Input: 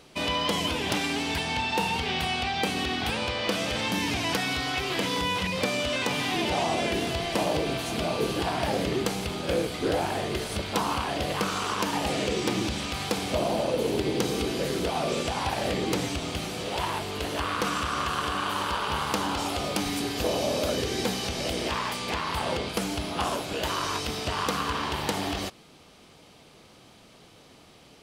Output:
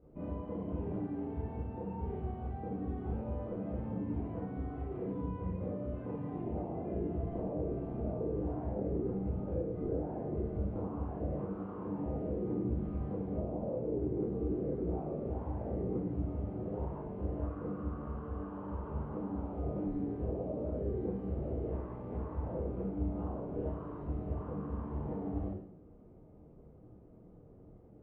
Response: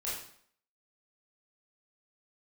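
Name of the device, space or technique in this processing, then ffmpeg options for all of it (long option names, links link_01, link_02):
television next door: -filter_complex "[0:a]acompressor=threshold=-29dB:ratio=6,lowpass=350[link_01];[1:a]atrim=start_sample=2205[link_02];[link_01][link_02]afir=irnorm=-1:irlink=0,lowpass=2100"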